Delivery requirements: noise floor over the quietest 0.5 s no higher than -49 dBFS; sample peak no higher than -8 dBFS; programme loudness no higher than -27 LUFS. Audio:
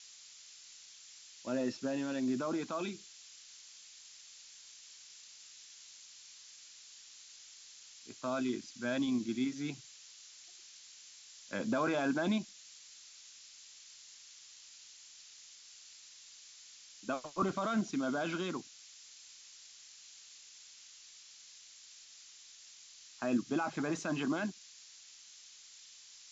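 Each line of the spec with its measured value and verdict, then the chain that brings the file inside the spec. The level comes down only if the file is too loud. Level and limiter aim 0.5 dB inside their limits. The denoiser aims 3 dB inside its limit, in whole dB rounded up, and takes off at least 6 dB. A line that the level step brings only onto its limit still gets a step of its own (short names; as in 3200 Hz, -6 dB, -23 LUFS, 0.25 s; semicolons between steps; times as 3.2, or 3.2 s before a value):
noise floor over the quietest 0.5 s -56 dBFS: OK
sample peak -20.5 dBFS: OK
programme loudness -36.0 LUFS: OK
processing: none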